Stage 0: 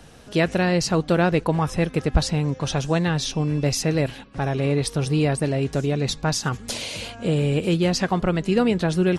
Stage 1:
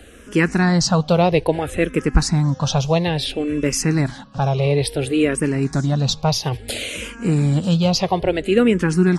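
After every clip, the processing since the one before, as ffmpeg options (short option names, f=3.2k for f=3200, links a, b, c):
-filter_complex "[0:a]asplit=2[a][b];[b]afreqshift=-0.59[c];[a][c]amix=inputs=2:normalize=1,volume=6.5dB"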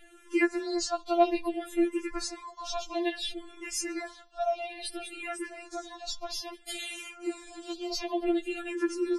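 -af "afftfilt=real='re*4*eq(mod(b,16),0)':imag='im*4*eq(mod(b,16),0)':win_size=2048:overlap=0.75,volume=-8.5dB"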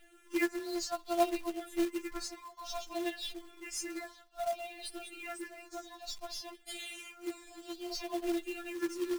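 -af "acrusher=bits=3:mode=log:mix=0:aa=0.000001,volume=-6dB"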